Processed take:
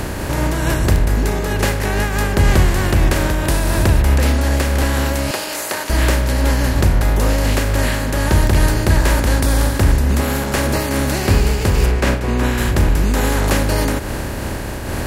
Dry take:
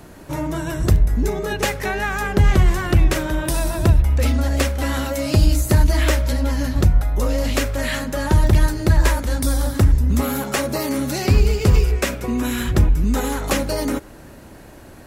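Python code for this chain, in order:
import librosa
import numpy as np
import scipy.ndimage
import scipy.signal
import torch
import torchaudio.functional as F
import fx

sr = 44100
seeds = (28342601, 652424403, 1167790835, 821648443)

y = fx.bin_compress(x, sr, power=0.4)
y = fx.highpass(y, sr, hz=560.0, slope=12, at=(5.31, 5.9))
y = fx.high_shelf(y, sr, hz=6300.0, db=-10.0, at=(11.86, 12.58))
y = fx.am_noise(y, sr, seeds[0], hz=5.7, depth_pct=55)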